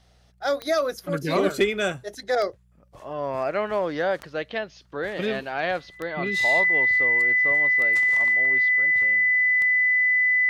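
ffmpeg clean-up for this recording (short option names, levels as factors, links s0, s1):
-af "adeclick=t=4,bandreject=f=60.5:t=h:w=4,bandreject=f=121:t=h:w=4,bandreject=f=181.5:t=h:w=4,bandreject=f=2000:w=30"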